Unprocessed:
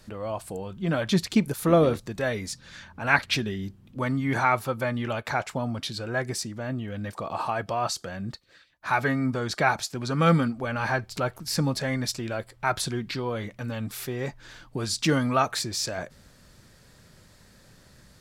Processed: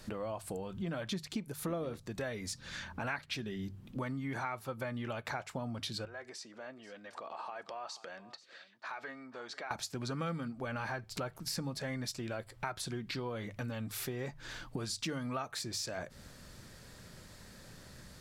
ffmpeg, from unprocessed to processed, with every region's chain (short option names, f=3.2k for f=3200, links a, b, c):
-filter_complex "[0:a]asettb=1/sr,asplit=3[a][b][c];[a]atrim=end=6.054[d];[b]atrim=start=6.05:end=9.71,asetpts=PTS-STARTPTS,afade=t=in:d=0.004:c=qsin,afade=t=out:st=3.656:d=0.004:c=qsin,acompressor=threshold=-43dB:ratio=4:attack=3.2:release=140:knee=1:detection=peak,highpass=430,lowpass=5.7k,aecho=1:1:486:0.141,atrim=end_sample=161406[e];[c]atrim=start=9.706[f];[d][e]acrossfade=d=0.004:c1=hsin:c2=qsin[g];[g][f]acrossfade=d=0.004:c1=qsin:c2=hsin,bandreject=f=50:t=h:w=6,bandreject=f=100:t=h:w=6,bandreject=f=150:t=h:w=6,acompressor=threshold=-38dB:ratio=6,volume=1.5dB"